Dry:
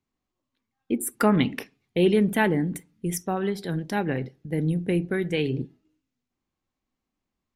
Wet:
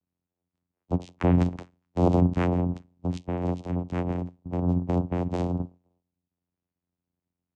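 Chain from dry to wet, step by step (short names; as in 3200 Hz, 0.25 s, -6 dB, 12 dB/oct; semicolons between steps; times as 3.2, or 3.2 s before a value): bin magnitudes rounded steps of 15 dB; vocoder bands 4, saw 88.2 Hz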